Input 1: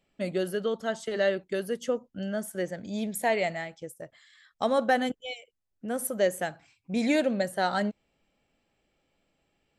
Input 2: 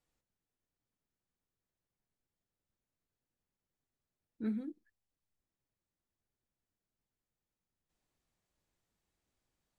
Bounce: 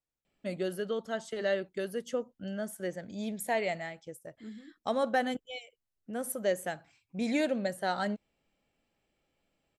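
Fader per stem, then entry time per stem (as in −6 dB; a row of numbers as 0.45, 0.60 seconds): −4.5, −9.5 decibels; 0.25, 0.00 seconds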